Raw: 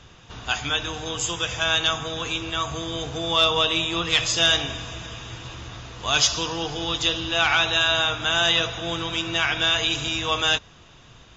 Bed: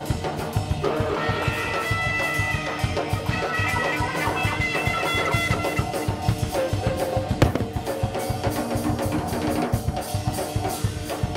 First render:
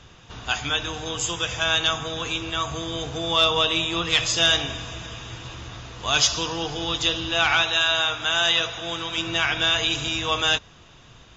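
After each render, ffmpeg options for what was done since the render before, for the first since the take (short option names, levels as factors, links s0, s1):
-filter_complex "[0:a]asettb=1/sr,asplit=3[s0][s1][s2];[s0]atrim=end=7.624[s3];[s1]atrim=start=7.62:end=9.18,asetpts=PTS-STARTPTS,afade=t=in:d=0.004:c=qsin,afade=t=out:st=1.556:d=0.004:c=qsin,lowshelf=f=400:g=-7.5[s4];[s2]atrim=start=9.176[s5];[s3][s4]acrossfade=d=0.004:c1=hsin:c2=qsin[s6];[s6][s5]acrossfade=d=0.004:c1=qsin:c2=hsin"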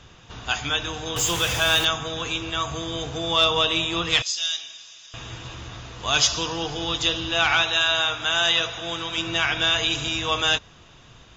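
-filter_complex "[0:a]asettb=1/sr,asplit=3[s0][s1][s2];[s0]atrim=end=1.164[s3];[s1]atrim=start=1.16:end=1.85,asetpts=PTS-STARTPTS,afade=t=in:d=0.004:c=qsin,afade=t=out:st=0.686:d=0.004:c=qsin,aeval=exprs='val(0)+0.5*0.0596*sgn(val(0))':c=same[s4];[s2]atrim=start=1.846[s5];[s3][s4]acrossfade=d=0.004:c1=hsin:c2=qsin[s6];[s6][s5]acrossfade=d=0.004:c1=qsin:c2=hsin,asettb=1/sr,asplit=3[s7][s8][s9];[s7]atrim=end=4.224[s10];[s8]atrim=start=4.22:end=5.14,asetpts=PTS-STARTPTS,afade=t=in:d=0.004:c=qsin,afade=t=out:st=0.916:d=0.004:c=qsin,bandpass=f=5300:t=q:w=2[s11];[s9]atrim=start=5.136[s12];[s10][s11]acrossfade=d=0.004:c1=hsin:c2=qsin[s13];[s13][s12]acrossfade=d=0.004:c1=qsin:c2=hsin"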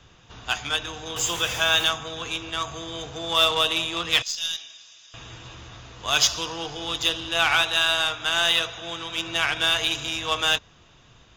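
-filter_complex "[0:a]aeval=exprs='0.398*(cos(1*acos(clip(val(0)/0.398,-1,1)))-cos(1*PI/2))+0.0224*(cos(7*acos(clip(val(0)/0.398,-1,1)))-cos(7*PI/2))+0.00355*(cos(8*acos(clip(val(0)/0.398,-1,1)))-cos(8*PI/2))':c=same,acrossover=split=390|1400|7900[s0][s1][s2][s3];[s0]asoftclip=type=tanh:threshold=0.0133[s4];[s4][s1][s2][s3]amix=inputs=4:normalize=0"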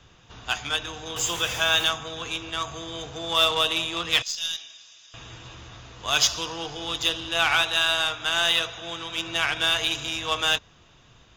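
-af "volume=0.891"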